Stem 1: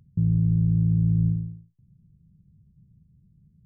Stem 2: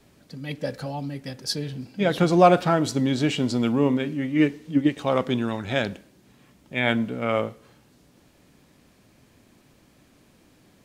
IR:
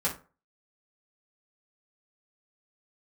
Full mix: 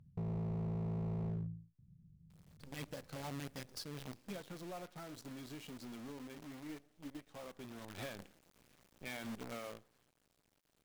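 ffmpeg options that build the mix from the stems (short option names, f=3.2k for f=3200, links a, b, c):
-filter_complex "[0:a]aemphasis=mode=reproduction:type=cd,asoftclip=type=hard:threshold=-27dB,volume=-7dB,asplit=2[a][b];[b]volume=-24dB[c];[1:a]acompressor=threshold=-24dB:ratio=2.5,aeval=exprs='(tanh(6.31*val(0)+0.3)-tanh(0.3))/6.31':c=same,acrusher=bits=6:dc=4:mix=0:aa=0.000001,adelay=2300,volume=-1.5dB,afade=t=out:st=4.13:d=0.3:silence=0.375837,afade=t=in:st=7.74:d=0.47:silence=0.266073,afade=t=out:st=9.19:d=0.65:silence=0.421697[d];[2:a]atrim=start_sample=2205[e];[c][e]afir=irnorm=-1:irlink=0[f];[a][d][f]amix=inputs=3:normalize=0,alimiter=level_in=11.5dB:limit=-24dB:level=0:latency=1:release=336,volume=-11.5dB"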